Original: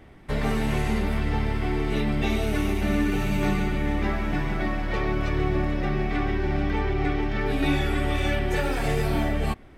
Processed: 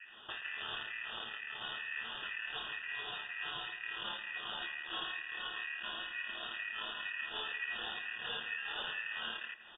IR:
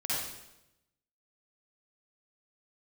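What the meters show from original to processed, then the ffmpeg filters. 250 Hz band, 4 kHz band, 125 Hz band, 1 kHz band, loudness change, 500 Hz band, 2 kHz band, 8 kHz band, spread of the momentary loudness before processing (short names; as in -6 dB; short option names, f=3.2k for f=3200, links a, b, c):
-34.5 dB, -1.5 dB, -40.0 dB, -15.0 dB, -13.5 dB, -26.0 dB, -6.0 dB, under -35 dB, 3 LU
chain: -filter_complex "[0:a]equalizer=f=160:t=o:w=2.1:g=-4,acompressor=threshold=-31dB:ratio=6,asoftclip=type=hard:threshold=-33.5dB,acrossover=split=580[a][b];[a]aeval=exprs='val(0)*(1-1/2+1/2*cos(2*PI*2.1*n/s))':c=same[c];[b]aeval=exprs='val(0)*(1-1/2-1/2*cos(2*PI*2.1*n/s))':c=same[d];[c][d]amix=inputs=2:normalize=0,asoftclip=type=tanh:threshold=-36dB,aeval=exprs='val(0)*sin(2*PI*1500*n/s)':c=same,lowpass=f=3.1k:t=q:w=0.5098,lowpass=f=3.1k:t=q:w=0.6013,lowpass=f=3.1k:t=q:w=0.9,lowpass=f=3.1k:t=q:w=2.563,afreqshift=-3700,asuperstop=centerf=2200:order=12:qfactor=4.2,asplit=2[e][f];[f]adelay=166,lowpass=f=2.2k:p=1,volume=-14.5dB,asplit=2[g][h];[h]adelay=166,lowpass=f=2.2k:p=1,volume=0.38,asplit=2[i][j];[j]adelay=166,lowpass=f=2.2k:p=1,volume=0.38,asplit=2[k][l];[l]adelay=166,lowpass=f=2.2k:p=1,volume=0.38[m];[e][g][i][k][m]amix=inputs=5:normalize=0,volume=9.5dB"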